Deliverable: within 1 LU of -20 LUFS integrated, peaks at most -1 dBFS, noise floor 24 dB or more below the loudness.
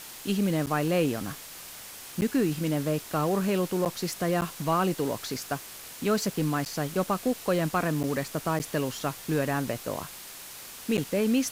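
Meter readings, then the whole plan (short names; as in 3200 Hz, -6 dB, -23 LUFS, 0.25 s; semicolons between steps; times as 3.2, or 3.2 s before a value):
dropouts 8; longest dropout 8.8 ms; noise floor -44 dBFS; noise floor target -53 dBFS; loudness -28.5 LUFS; peak -14.0 dBFS; loudness target -20.0 LUFS
-> interpolate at 0.66/2.21/3.85/4.41/6.65/8.03/8.59/10.97, 8.8 ms; noise print and reduce 9 dB; gain +8.5 dB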